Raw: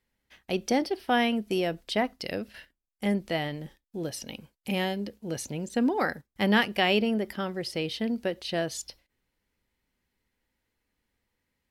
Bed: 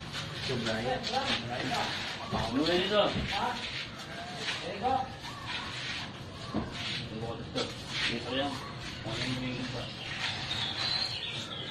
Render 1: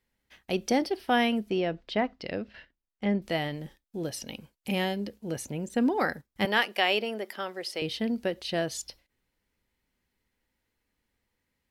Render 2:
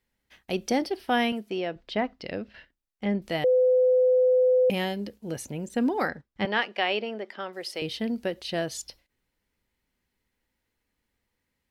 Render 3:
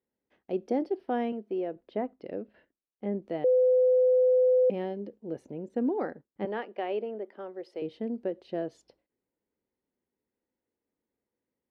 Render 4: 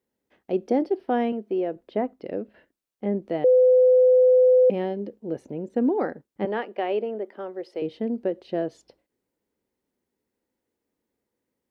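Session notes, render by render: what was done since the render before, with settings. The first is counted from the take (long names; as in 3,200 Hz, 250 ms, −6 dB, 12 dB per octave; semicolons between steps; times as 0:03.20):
0:01.50–0:03.22: high-frequency loss of the air 180 metres; 0:05.32–0:05.78: parametric band 4,500 Hz −7 dB 0.98 octaves; 0:06.45–0:07.82: high-pass filter 440 Hz
0:01.32–0:01.76: high-pass filter 320 Hz 6 dB per octave; 0:03.44–0:04.70: beep over 507 Hz −17 dBFS; 0:06.08–0:07.53: high-frequency loss of the air 140 metres
resonant band-pass 390 Hz, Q 1.3
level +6 dB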